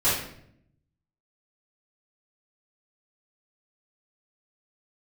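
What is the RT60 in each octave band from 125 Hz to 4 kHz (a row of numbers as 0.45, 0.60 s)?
1.2, 1.0, 0.75, 0.60, 0.60, 0.50 s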